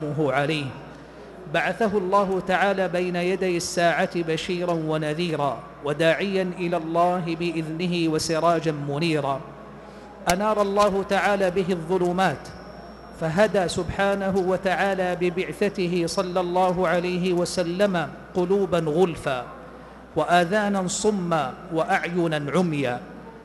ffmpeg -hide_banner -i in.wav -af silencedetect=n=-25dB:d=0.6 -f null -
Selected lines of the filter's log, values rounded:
silence_start: 0.68
silence_end: 1.54 | silence_duration: 0.86
silence_start: 9.37
silence_end: 10.27 | silence_duration: 0.89
silence_start: 12.35
silence_end: 13.22 | silence_duration: 0.87
silence_start: 19.42
silence_end: 20.16 | silence_duration: 0.74